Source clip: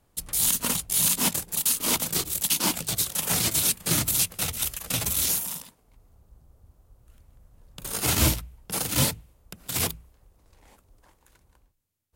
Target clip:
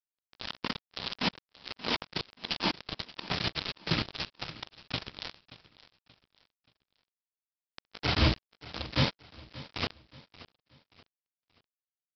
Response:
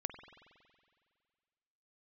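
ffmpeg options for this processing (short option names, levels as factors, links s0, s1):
-af "aresample=11025,acrusher=bits=3:mix=0:aa=0.5,aresample=44100,aecho=1:1:579|1158|1737:0.126|0.0466|0.0172,volume=0.794"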